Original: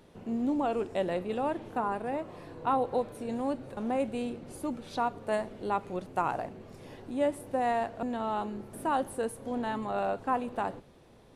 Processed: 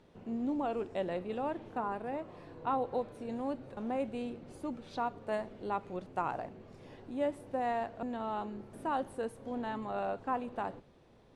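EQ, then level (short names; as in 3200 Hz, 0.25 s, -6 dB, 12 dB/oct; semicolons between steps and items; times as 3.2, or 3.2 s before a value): air absorption 59 m; -4.5 dB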